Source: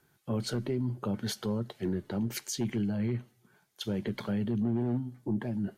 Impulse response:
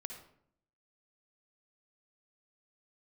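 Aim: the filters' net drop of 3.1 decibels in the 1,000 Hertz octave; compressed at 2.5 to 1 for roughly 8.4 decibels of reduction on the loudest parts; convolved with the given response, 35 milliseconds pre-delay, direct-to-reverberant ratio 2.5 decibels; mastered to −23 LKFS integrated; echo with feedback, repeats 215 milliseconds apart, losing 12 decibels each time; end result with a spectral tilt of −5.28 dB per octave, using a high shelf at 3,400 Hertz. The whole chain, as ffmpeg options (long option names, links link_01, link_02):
-filter_complex "[0:a]equalizer=frequency=1000:width_type=o:gain=-4.5,highshelf=frequency=3400:gain=4,acompressor=threshold=-40dB:ratio=2.5,aecho=1:1:215|430|645:0.251|0.0628|0.0157,asplit=2[link_01][link_02];[1:a]atrim=start_sample=2205,adelay=35[link_03];[link_02][link_03]afir=irnorm=-1:irlink=0,volume=0dB[link_04];[link_01][link_04]amix=inputs=2:normalize=0,volume=15.5dB"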